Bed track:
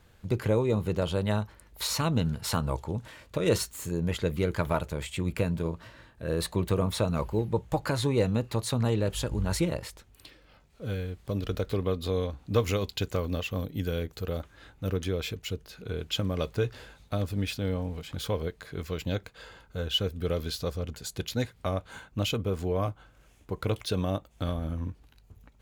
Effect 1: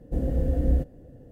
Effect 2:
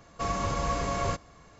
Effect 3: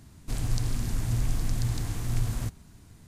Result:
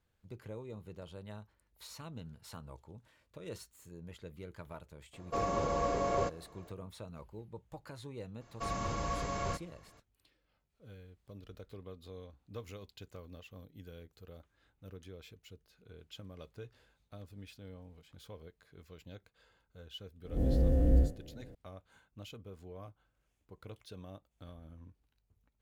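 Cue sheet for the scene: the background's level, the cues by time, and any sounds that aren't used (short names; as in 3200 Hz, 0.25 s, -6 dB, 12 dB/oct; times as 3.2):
bed track -20 dB
5.13 add 2 -9 dB + bell 470 Hz +12 dB 1.8 oct
8.41 add 2 -7 dB
20.24 add 1 -1.5 dB + time blur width 90 ms
not used: 3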